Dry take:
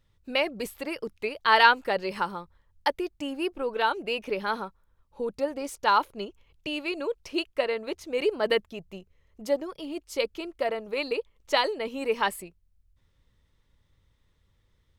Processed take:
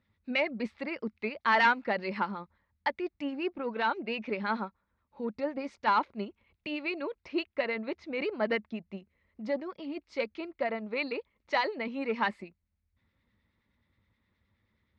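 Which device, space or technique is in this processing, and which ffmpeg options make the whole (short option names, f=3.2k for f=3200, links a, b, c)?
guitar amplifier with harmonic tremolo: -filter_complex "[0:a]acrossover=split=1500[a][b];[a]aeval=exprs='val(0)*(1-0.5/2+0.5/2*cos(2*PI*9.5*n/s))':c=same[c];[b]aeval=exprs='val(0)*(1-0.5/2-0.5/2*cos(2*PI*9.5*n/s))':c=same[d];[c][d]amix=inputs=2:normalize=0,asoftclip=type=tanh:threshold=-17dB,highpass=87,equalizer=f=140:t=q:w=4:g=-7,equalizer=f=220:t=q:w=4:g=9,equalizer=f=450:t=q:w=4:g=-5,equalizer=f=2.1k:t=q:w=4:g=6,equalizer=f=3.1k:t=q:w=4:g=-7,lowpass=f=4.2k:w=0.5412,lowpass=f=4.2k:w=1.3066"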